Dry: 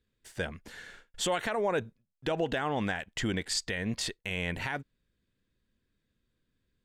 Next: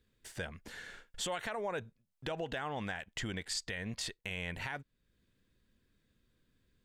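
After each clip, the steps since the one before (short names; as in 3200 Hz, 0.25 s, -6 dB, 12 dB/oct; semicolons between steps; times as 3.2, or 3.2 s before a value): dynamic EQ 300 Hz, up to -5 dB, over -44 dBFS, Q 0.97; compressor 1.5:1, threshold -57 dBFS, peak gain reduction 10.5 dB; gain +4 dB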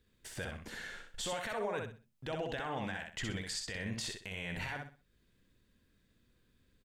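limiter -31.5 dBFS, peak gain reduction 7 dB; on a send: feedback echo 63 ms, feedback 28%, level -4 dB; on the sum: gain +1.5 dB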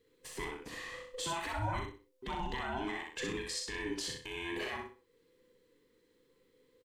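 band inversion scrambler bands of 500 Hz; doubler 38 ms -7 dB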